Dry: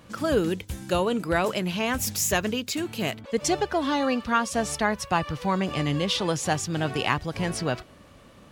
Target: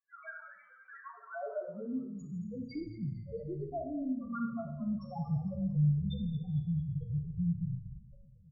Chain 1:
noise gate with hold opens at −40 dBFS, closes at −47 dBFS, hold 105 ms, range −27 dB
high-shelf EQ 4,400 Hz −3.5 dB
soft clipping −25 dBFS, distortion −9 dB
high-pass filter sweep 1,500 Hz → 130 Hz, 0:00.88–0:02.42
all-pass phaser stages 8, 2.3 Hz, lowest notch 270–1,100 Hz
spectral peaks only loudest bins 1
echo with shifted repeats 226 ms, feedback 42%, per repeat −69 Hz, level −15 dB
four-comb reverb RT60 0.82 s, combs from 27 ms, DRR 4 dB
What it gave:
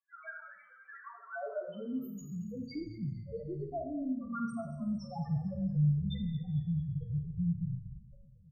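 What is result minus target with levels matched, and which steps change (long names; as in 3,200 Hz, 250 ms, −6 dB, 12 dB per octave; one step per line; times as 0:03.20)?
4,000 Hz band +3.5 dB
change: high-shelf EQ 4,400 Hz −11.5 dB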